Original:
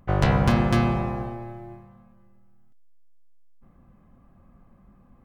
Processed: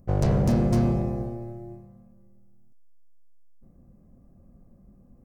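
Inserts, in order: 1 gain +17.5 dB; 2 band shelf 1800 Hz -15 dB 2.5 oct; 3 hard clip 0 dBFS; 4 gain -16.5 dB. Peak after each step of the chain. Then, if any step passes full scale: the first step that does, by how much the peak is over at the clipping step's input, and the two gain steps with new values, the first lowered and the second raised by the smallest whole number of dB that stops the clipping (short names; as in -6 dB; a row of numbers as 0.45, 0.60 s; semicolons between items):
+10.5, +9.0, 0.0, -16.5 dBFS; step 1, 9.0 dB; step 1 +8.5 dB, step 4 -7.5 dB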